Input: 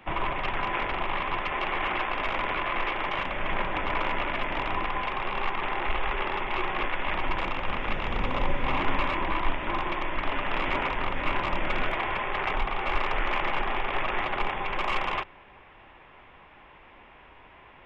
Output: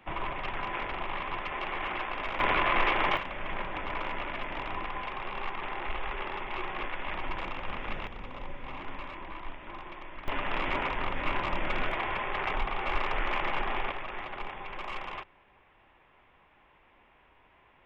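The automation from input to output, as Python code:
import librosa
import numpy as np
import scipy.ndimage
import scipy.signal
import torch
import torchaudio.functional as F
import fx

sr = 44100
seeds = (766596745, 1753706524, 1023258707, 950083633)

y = fx.gain(x, sr, db=fx.steps((0.0, -5.5), (2.4, 3.0), (3.17, -6.5), (8.07, -14.0), (10.28, -3.0), (13.92, -10.0)))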